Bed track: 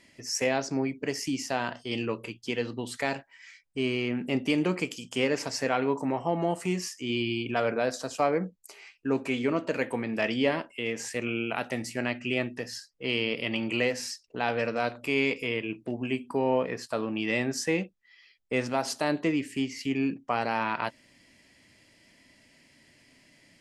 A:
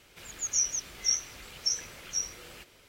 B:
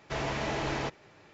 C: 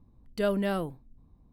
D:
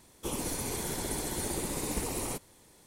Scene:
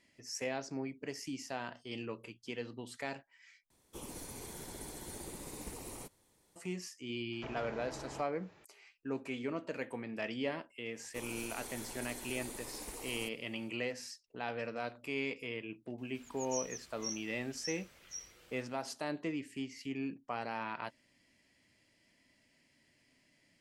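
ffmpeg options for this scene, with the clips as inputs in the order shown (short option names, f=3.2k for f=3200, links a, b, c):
-filter_complex "[4:a]asplit=2[a][b];[0:a]volume=-11dB[c];[2:a]acrossover=split=270|1500[d][e][f];[d]acompressor=threshold=-45dB:ratio=4[g];[e]acompressor=threshold=-41dB:ratio=4[h];[f]acompressor=threshold=-57dB:ratio=4[i];[g][h][i]amix=inputs=3:normalize=0[j];[b]equalizer=f=120:w=0.64:g=-12[k];[c]asplit=2[l][m];[l]atrim=end=3.704[n];[a]atrim=end=2.86,asetpts=PTS-STARTPTS,volume=-12dB[o];[m]atrim=start=6.556[p];[j]atrim=end=1.33,asetpts=PTS-STARTPTS,volume=-6dB,afade=t=in:d=0.004:c=hsin,afade=t=out:st=1.326:d=0.004:c=hsin,adelay=7320[q];[k]atrim=end=2.86,asetpts=PTS-STARTPTS,volume=-10dB,afade=t=in:d=0.1,afade=t=out:st=2.76:d=0.1,adelay=10910[r];[1:a]atrim=end=2.88,asetpts=PTS-STARTPTS,volume=-14dB,afade=t=in:d=0.004:c=hsin,afade=t=out:st=2.876:d=0.004:c=hsin,adelay=15980[s];[n][o]acrossfade=d=0.004:c1=hsin:c2=hsin[t];[t][p]acrossfade=d=0.004:c1=hsin:c2=hsin[u];[u][q][r][s]amix=inputs=4:normalize=0"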